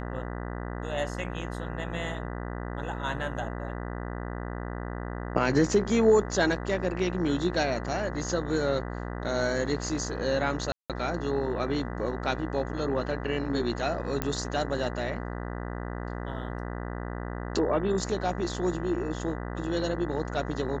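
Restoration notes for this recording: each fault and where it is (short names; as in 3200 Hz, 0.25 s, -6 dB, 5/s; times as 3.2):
buzz 60 Hz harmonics 33 -35 dBFS
10.72–10.9 gap 0.177 s
14.22 pop -13 dBFS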